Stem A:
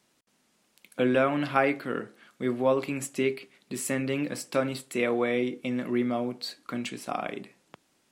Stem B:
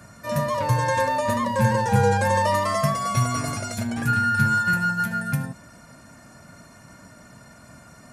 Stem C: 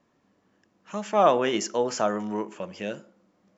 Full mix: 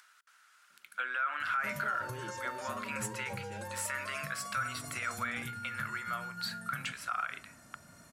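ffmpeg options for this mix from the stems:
-filter_complex "[0:a]acompressor=threshold=0.0501:ratio=6,highpass=f=1400:t=q:w=7.8,volume=0.708[s0];[1:a]highshelf=f=7400:g=11,acompressor=threshold=0.0316:ratio=5,adelay=1400,volume=0.282[s1];[2:a]acompressor=threshold=0.0398:ratio=6,aecho=1:1:5.3:0.65,adelay=700,volume=0.158[s2];[s0][s1][s2]amix=inputs=3:normalize=0,acompressor=mode=upward:threshold=0.00158:ratio=2.5,alimiter=level_in=1.06:limit=0.0631:level=0:latency=1:release=54,volume=0.944"

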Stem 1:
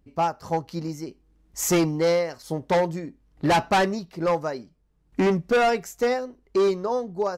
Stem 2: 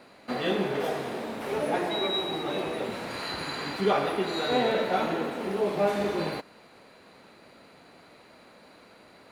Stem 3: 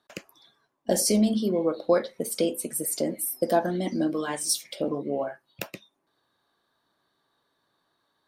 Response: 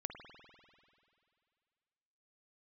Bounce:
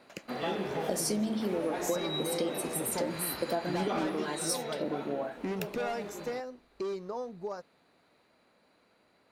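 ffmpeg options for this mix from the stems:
-filter_complex "[0:a]acompressor=threshold=0.0631:ratio=6,adelay=250,volume=0.355[s0];[1:a]volume=0.501,afade=t=out:st=4.03:d=0.56:silence=0.398107[s1];[2:a]volume=0.562[s2];[s0][s1][s2]amix=inputs=3:normalize=0,acompressor=threshold=0.0447:ratio=6"

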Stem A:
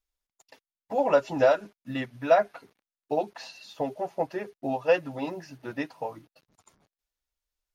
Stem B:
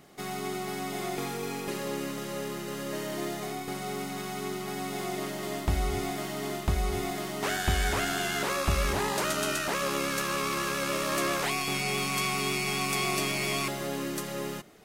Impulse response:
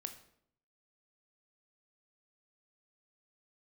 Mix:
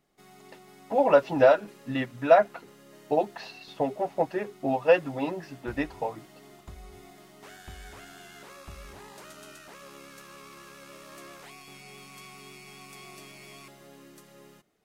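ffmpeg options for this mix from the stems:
-filter_complex "[0:a]lowpass=4000,volume=1.33[s0];[1:a]volume=0.126[s1];[s0][s1]amix=inputs=2:normalize=0"

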